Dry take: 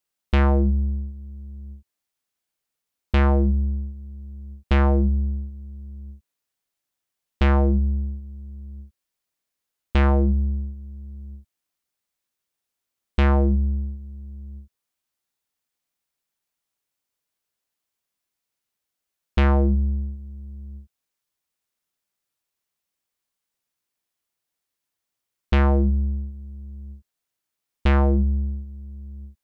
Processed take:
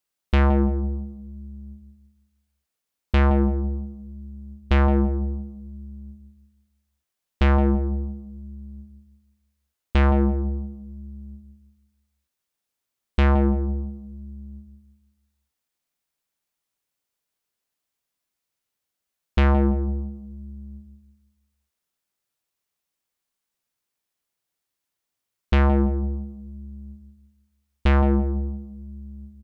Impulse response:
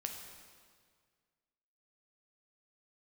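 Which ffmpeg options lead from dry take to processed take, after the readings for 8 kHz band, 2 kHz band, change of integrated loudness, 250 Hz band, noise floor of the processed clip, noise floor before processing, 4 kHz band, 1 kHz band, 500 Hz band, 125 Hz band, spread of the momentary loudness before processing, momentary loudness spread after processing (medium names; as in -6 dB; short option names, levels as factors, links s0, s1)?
no reading, 0.0 dB, -0.5 dB, +1.5 dB, -83 dBFS, -84 dBFS, 0.0 dB, +0.5 dB, +0.5 dB, -1.5 dB, 20 LU, 21 LU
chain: -filter_complex "[0:a]asplit=2[s0][s1];[s1]adelay=168,lowpass=f=850:p=1,volume=0.422,asplit=2[s2][s3];[s3]adelay=168,lowpass=f=850:p=1,volume=0.41,asplit=2[s4][s5];[s5]adelay=168,lowpass=f=850:p=1,volume=0.41,asplit=2[s6][s7];[s7]adelay=168,lowpass=f=850:p=1,volume=0.41,asplit=2[s8][s9];[s9]adelay=168,lowpass=f=850:p=1,volume=0.41[s10];[s0][s2][s4][s6][s8][s10]amix=inputs=6:normalize=0"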